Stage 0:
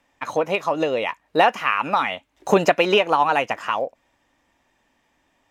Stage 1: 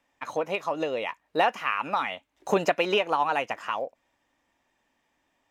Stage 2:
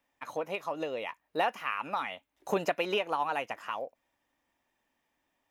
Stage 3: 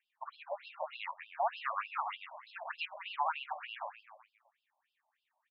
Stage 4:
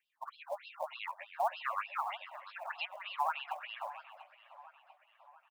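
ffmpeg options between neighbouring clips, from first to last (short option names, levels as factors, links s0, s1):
-af "lowshelf=f=160:g=-4.5,volume=0.473"
-af "aexciter=amount=2.3:drive=5.4:freq=10000,volume=0.501"
-filter_complex "[0:a]alimiter=limit=0.0794:level=0:latency=1:release=31,asplit=8[s0][s1][s2][s3][s4][s5][s6][s7];[s1]adelay=128,afreqshift=-95,volume=0.447[s8];[s2]adelay=256,afreqshift=-190,volume=0.254[s9];[s3]adelay=384,afreqshift=-285,volume=0.145[s10];[s4]adelay=512,afreqshift=-380,volume=0.0832[s11];[s5]adelay=640,afreqshift=-475,volume=0.0473[s12];[s6]adelay=768,afreqshift=-570,volume=0.0269[s13];[s7]adelay=896,afreqshift=-665,volume=0.0153[s14];[s0][s8][s9][s10][s11][s12][s13][s14]amix=inputs=8:normalize=0,afftfilt=real='re*between(b*sr/1024,780*pow(3800/780,0.5+0.5*sin(2*PI*3.3*pts/sr))/1.41,780*pow(3800/780,0.5+0.5*sin(2*PI*3.3*pts/sr))*1.41)':imag='im*between(b*sr/1024,780*pow(3800/780,0.5+0.5*sin(2*PI*3.3*pts/sr))/1.41,780*pow(3800/780,0.5+0.5*sin(2*PI*3.3*pts/sr))*1.41)':win_size=1024:overlap=0.75,volume=1.19"
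-filter_complex "[0:a]acrossover=split=1200|1500[s0][s1][s2];[s0]acrusher=bits=6:mode=log:mix=0:aa=0.000001[s3];[s3][s1][s2]amix=inputs=3:normalize=0,asplit=2[s4][s5];[s5]adelay=692,lowpass=f=3700:p=1,volume=0.158,asplit=2[s6][s7];[s7]adelay=692,lowpass=f=3700:p=1,volume=0.54,asplit=2[s8][s9];[s9]adelay=692,lowpass=f=3700:p=1,volume=0.54,asplit=2[s10][s11];[s11]adelay=692,lowpass=f=3700:p=1,volume=0.54,asplit=2[s12][s13];[s13]adelay=692,lowpass=f=3700:p=1,volume=0.54[s14];[s4][s6][s8][s10][s12][s14]amix=inputs=6:normalize=0"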